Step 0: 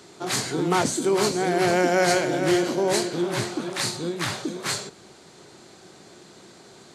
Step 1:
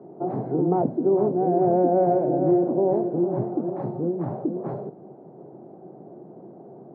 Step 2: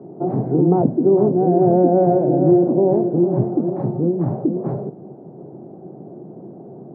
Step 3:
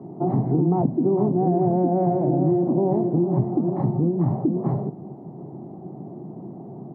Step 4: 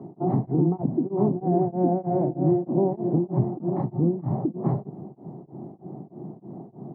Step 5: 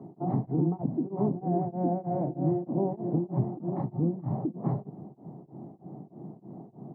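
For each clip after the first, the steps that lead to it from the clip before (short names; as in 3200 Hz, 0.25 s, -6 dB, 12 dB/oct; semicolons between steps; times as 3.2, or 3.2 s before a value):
Chebyshev band-pass 130–740 Hz, order 3; in parallel at +2 dB: compressor, threshold -33 dBFS, peak gain reduction 14.5 dB
low shelf 410 Hz +11 dB
comb 1 ms, depth 53%; compressor 4:1, threshold -17 dBFS, peak gain reduction 7.5 dB
beating tremolo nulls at 3.2 Hz
notch 370 Hz, Q 12; gain -4.5 dB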